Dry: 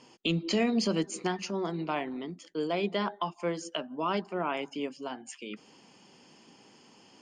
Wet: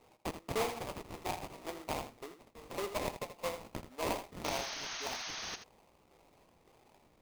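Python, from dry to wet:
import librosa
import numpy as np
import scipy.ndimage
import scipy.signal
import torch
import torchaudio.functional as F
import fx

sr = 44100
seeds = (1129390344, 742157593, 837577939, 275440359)

p1 = fx.filter_lfo_highpass(x, sr, shape='saw_up', hz=1.8, low_hz=440.0, high_hz=1800.0, q=2.0)
p2 = fx.sample_hold(p1, sr, seeds[0], rate_hz=1600.0, jitter_pct=20)
p3 = fx.spec_paint(p2, sr, seeds[1], shape='noise', start_s=4.44, length_s=1.12, low_hz=610.0, high_hz=6600.0, level_db=-35.0)
p4 = p3 + fx.echo_single(p3, sr, ms=81, db=-10.5, dry=0)
y = p4 * librosa.db_to_amplitude(-7.5)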